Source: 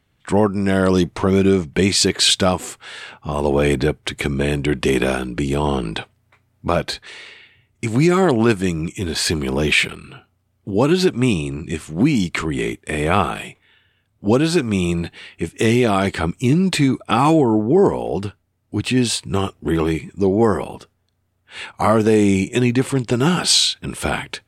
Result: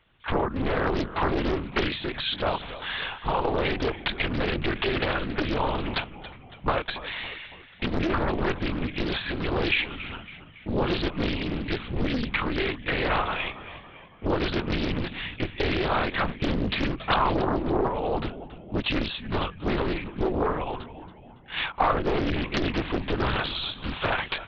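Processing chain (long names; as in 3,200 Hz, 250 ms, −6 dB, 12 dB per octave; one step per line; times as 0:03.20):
high-shelf EQ 2,700 Hz +10.5 dB
downward compressor 6 to 1, threshold −21 dBFS, peak gain reduction 16.5 dB
linear-prediction vocoder at 8 kHz whisper
parametric band 1,000 Hz +6 dB 1.3 octaves
on a send: echo with shifted repeats 279 ms, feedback 52%, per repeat −64 Hz, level −14.5 dB
on the sum: highs frequency-modulated by the lows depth 0.95 ms
level −2 dB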